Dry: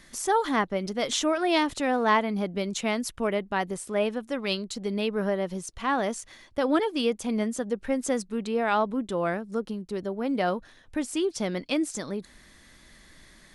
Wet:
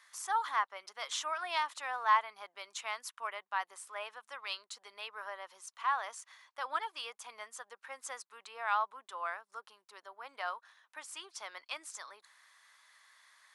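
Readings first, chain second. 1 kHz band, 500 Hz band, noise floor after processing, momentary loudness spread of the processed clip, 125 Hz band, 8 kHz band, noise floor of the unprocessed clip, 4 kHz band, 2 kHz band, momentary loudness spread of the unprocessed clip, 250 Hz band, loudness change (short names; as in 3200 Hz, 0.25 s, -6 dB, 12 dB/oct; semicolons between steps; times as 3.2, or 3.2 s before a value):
-5.0 dB, -21.5 dB, -82 dBFS, 16 LU, under -40 dB, -9.5 dB, -55 dBFS, -9.0 dB, -6.5 dB, 8 LU, under -40 dB, -10.0 dB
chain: ladder high-pass 900 Hz, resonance 50%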